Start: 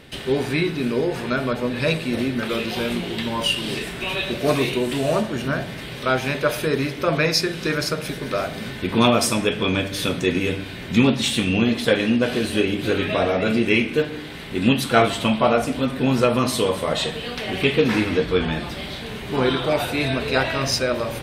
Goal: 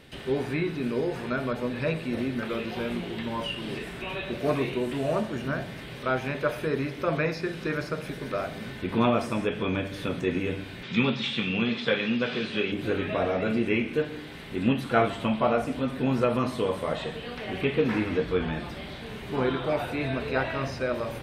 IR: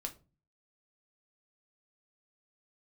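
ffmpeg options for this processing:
-filter_complex "[0:a]acrossover=split=2600[link_01][link_02];[link_02]acompressor=threshold=-42dB:ratio=4:attack=1:release=60[link_03];[link_01][link_03]amix=inputs=2:normalize=0,asettb=1/sr,asplit=3[link_04][link_05][link_06];[link_04]atrim=end=10.834[link_07];[link_05]atrim=start=10.83:end=12.72,asetpts=PTS-STARTPTS,afade=type=in:duration=0.004:curve=qsin,afade=type=out:start_time=1.886:duration=0.004:curve=qsin,highpass=frequency=120:width=0.5412,highpass=frequency=120:width=1.3066,equalizer=frequency=300:width_type=q:width=4:gain=-8,equalizer=frequency=660:width_type=q:width=4:gain=-6,equalizer=frequency=1300:width_type=q:width=4:gain=4,equalizer=frequency=2400:width_type=q:width=4:gain=6,equalizer=frequency=3500:width_type=q:width=4:gain=9,equalizer=frequency=5000:width_type=q:width=4:gain=6,lowpass=frequency=7100:width=0.5412,lowpass=frequency=7100:width=1.3066[link_08];[link_06]atrim=start=12.716[link_09];[link_07][link_08]acrossfade=duration=0.004:curve1=hsin:curve2=qsin[link_10];[link_10][link_09]acrossfade=duration=0.004:curve1=qsin:curve2=hsin,volume=-6dB"

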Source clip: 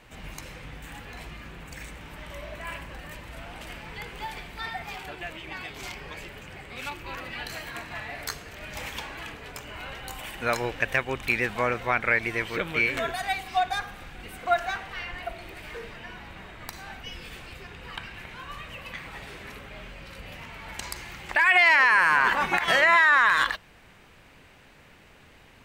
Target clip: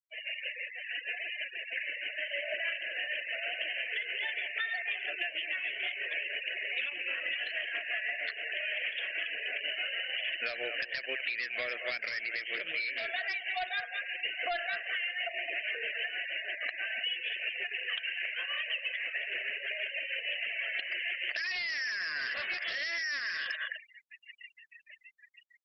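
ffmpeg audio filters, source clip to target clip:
ffmpeg -i in.wav -filter_complex "[0:a]asplit=2[link_01][link_02];[link_02]adelay=210,highpass=300,lowpass=3400,asoftclip=type=hard:threshold=-18dB,volume=-12dB[link_03];[link_01][link_03]amix=inputs=2:normalize=0,tremolo=f=6.3:d=0.44,dynaudnorm=framelen=700:gausssize=5:maxgain=4dB,highpass=430,equalizer=frequency=610:width_type=q:width=4:gain=5,equalizer=frequency=990:width_type=q:width=4:gain=-7,equalizer=frequency=1900:width_type=q:width=4:gain=7,equalizer=frequency=2800:width_type=q:width=4:gain=9,lowpass=frequency=3000:width=0.5412,lowpass=frequency=3000:width=1.3066,aresample=11025,asoftclip=type=tanh:threshold=-19.5dB,aresample=44100,superequalizer=9b=0.251:10b=0.501,afftfilt=real='re*gte(hypot(re,im),0.0141)':imag='im*gte(hypot(re,im),0.0141)':win_size=1024:overlap=0.75,crystalizer=i=7:c=0,alimiter=limit=-10.5dB:level=0:latency=1:release=180,acompressor=threshold=-29dB:ratio=20,volume=-1.5dB" -ar 48000 -c:a libopus -b:a 24k out.opus

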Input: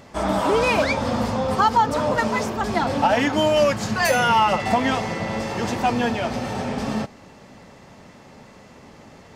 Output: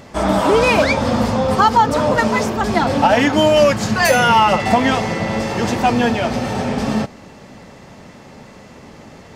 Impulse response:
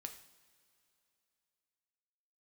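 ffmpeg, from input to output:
-filter_complex "[0:a]asplit=2[link_01][link_02];[1:a]atrim=start_sample=2205,lowpass=frequency=1100:width=0.5412,lowpass=frequency=1100:width=1.3066[link_03];[link_02][link_03]afir=irnorm=-1:irlink=0,volume=-12.5dB[link_04];[link_01][link_04]amix=inputs=2:normalize=0,volume=5.5dB"

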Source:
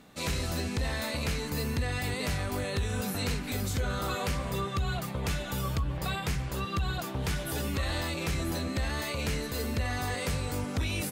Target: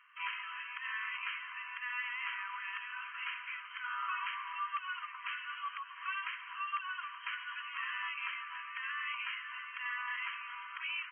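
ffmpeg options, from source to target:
ffmpeg -i in.wav -af "afftfilt=real='re*between(b*sr/4096,960,3200)':imag='im*between(b*sr/4096,960,3200)':win_size=4096:overlap=0.75" out.wav

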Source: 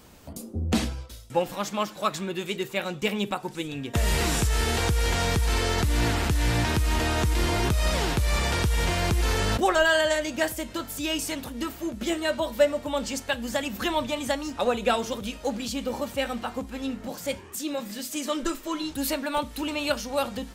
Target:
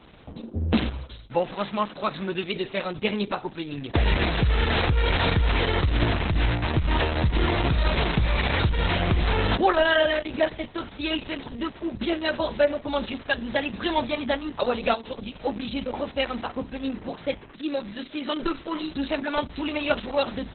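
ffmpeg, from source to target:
ffmpeg -i in.wav -filter_complex "[0:a]asettb=1/sr,asplit=3[link_01][link_02][link_03];[link_01]atrim=end=6.574[link_04];[link_02]atrim=start=6.57:end=8,asetpts=PTS-STARTPTS,afade=type=in:duration=0.004:curve=qsin,afade=type=out:start_time=1.426:duration=0.004:curve=qsin,lowpass=frequency=10000:width=0.5412,lowpass=frequency=10000:width=1.3066[link_05];[link_03]atrim=start=7.996[link_06];[link_04][link_05]acrossfade=duration=0.004:curve1=hsin:curve2=qsin[link_07];[link_07][link_06]acrossfade=duration=0.004:curve1=qsin:curve2=hsin,asplit=3[link_08][link_09][link_10];[link_08]afade=type=out:start_time=14.93:duration=0.02[link_11];[link_09]acompressor=threshold=-33dB:ratio=2.5,afade=type=in:start_time=14.93:duration=0.02,afade=type=out:start_time=15.45:duration=0.02[link_12];[link_10]afade=type=in:start_time=15.45:duration=0.02[link_13];[link_11][link_12][link_13]amix=inputs=3:normalize=0,volume=2.5dB" -ar 48000 -c:a libopus -b:a 6k out.opus

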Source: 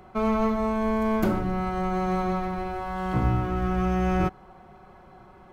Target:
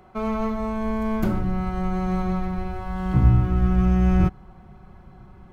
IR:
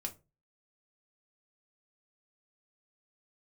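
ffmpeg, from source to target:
-af "asubboost=boost=4.5:cutoff=230,volume=-2dB"

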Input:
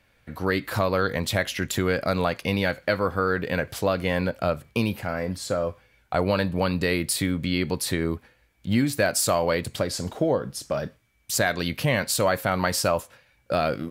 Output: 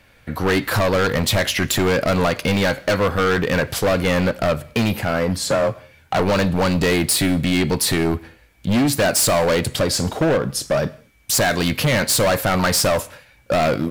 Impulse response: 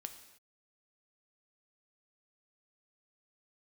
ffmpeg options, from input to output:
-filter_complex "[0:a]asettb=1/sr,asplit=3[link_01][link_02][link_03];[link_01]atrim=end=5.454[link_04];[link_02]atrim=start=5.45:end=6.2,asetpts=PTS-STARTPTS,afade=type=in:duration=0.004:curve=qsin,afade=type=out:start_time=0.746:duration=0.004:curve=qsin,afreqshift=26[link_05];[link_03]atrim=start=6.196[link_06];[link_04][link_05]acrossfade=duration=0.004:curve1=hsin:curve2=qsin[link_07];[link_07][link_06]acrossfade=duration=0.004:curve1=qsin:curve2=hsin,asoftclip=type=hard:threshold=-24.5dB,asplit=2[link_08][link_09];[1:a]atrim=start_sample=2205,afade=type=out:start_time=0.28:duration=0.01,atrim=end_sample=12789[link_10];[link_09][link_10]afir=irnorm=-1:irlink=0,volume=-6dB[link_11];[link_08][link_11]amix=inputs=2:normalize=0,volume=8dB"

